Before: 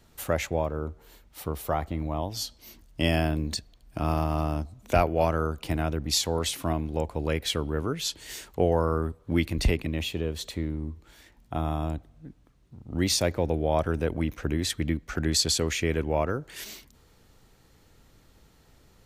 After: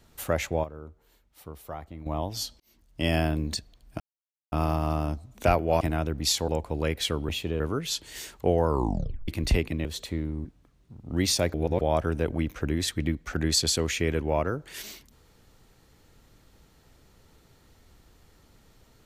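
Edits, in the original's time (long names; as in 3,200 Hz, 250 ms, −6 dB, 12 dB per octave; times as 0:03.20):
0:00.64–0:02.06: clip gain −10.5 dB
0:02.60–0:03.16: fade in
0:04.00: splice in silence 0.52 s
0:05.29–0:05.67: remove
0:06.34–0:06.93: remove
0:08.81: tape stop 0.61 s
0:09.99–0:10.30: move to 0:07.74
0:10.90–0:12.27: remove
0:13.36–0:13.63: reverse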